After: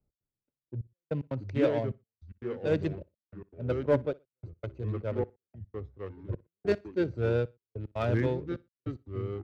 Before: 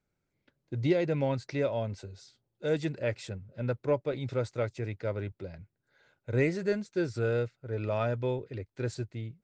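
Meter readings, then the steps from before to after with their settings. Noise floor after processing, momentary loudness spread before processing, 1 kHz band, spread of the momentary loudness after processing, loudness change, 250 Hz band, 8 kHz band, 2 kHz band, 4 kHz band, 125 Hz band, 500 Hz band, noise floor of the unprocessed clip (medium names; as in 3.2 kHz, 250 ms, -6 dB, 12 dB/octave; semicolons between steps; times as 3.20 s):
under -85 dBFS, 12 LU, -1.5 dB, 15 LU, -0.5 dB, 0.0 dB, no reading, -3.5 dB, -4.0 dB, -0.5 dB, -0.5 dB, -82 dBFS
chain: local Wiener filter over 25 samples; Bessel low-pass 5.7 kHz; ever faster or slower copies 546 ms, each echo -3 st, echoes 3, each echo -6 dB; reverse; upward compressor, threshold -36 dBFS; reverse; hard clipper -20 dBFS, distortion -24 dB; trance gate "x.xxxxxx..." 149 bpm -60 dB; on a send: feedback delay 60 ms, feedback 29%, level -23 dB; on the sum: three bands expanded up and down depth 70%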